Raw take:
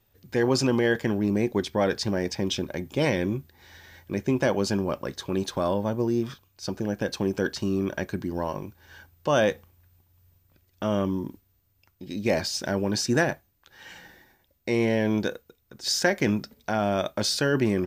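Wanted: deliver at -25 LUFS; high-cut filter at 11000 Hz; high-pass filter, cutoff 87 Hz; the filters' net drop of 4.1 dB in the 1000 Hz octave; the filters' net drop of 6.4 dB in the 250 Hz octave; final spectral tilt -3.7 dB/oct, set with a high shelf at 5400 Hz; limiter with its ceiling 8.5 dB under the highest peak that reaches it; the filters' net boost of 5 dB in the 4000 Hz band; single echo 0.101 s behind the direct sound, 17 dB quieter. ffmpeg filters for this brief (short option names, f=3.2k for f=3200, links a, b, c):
-af "highpass=87,lowpass=11k,equalizer=f=250:t=o:g=-8.5,equalizer=f=1k:t=o:g=-5.5,equalizer=f=4k:t=o:g=4,highshelf=f=5.4k:g=5.5,alimiter=limit=-17.5dB:level=0:latency=1,aecho=1:1:101:0.141,volume=5.5dB"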